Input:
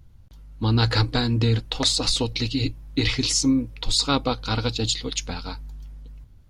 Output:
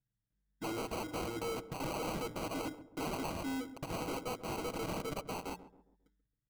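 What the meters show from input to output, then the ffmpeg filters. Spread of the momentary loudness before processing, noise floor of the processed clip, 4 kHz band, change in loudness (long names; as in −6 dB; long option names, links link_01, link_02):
11 LU, below −85 dBFS, −24.0 dB, −16.5 dB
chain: -filter_complex "[0:a]highpass=170,anlmdn=0.398,lowshelf=frequency=230:gain=-7,bandreject=frequency=60:width_type=h:width=6,bandreject=frequency=120:width_type=h:width=6,bandreject=frequency=180:width_type=h:width=6,bandreject=frequency=240:width_type=h:width=6,bandreject=frequency=300:width_type=h:width=6,bandreject=frequency=360:width_type=h:width=6,bandreject=frequency=420:width_type=h:width=6,aecho=1:1:6.5:0.84,acrossover=split=240|1400[link_01][link_02][link_03];[link_01]acompressor=threshold=-46dB:ratio=10[link_04];[link_04][link_02][link_03]amix=inputs=3:normalize=0,alimiter=limit=-15dB:level=0:latency=1:release=77,aresample=11025,asoftclip=type=hard:threshold=-31.5dB,aresample=44100,acrusher=samples=25:mix=1:aa=0.000001,asplit=2[link_05][link_06];[link_06]adelay=135,lowpass=frequency=840:poles=1,volume=-12.5dB,asplit=2[link_07][link_08];[link_08]adelay=135,lowpass=frequency=840:poles=1,volume=0.44,asplit=2[link_09][link_10];[link_10]adelay=135,lowpass=frequency=840:poles=1,volume=0.44,asplit=2[link_11][link_12];[link_12]adelay=135,lowpass=frequency=840:poles=1,volume=0.44[link_13];[link_05][link_07][link_09][link_11][link_13]amix=inputs=5:normalize=0,volume=-4.5dB"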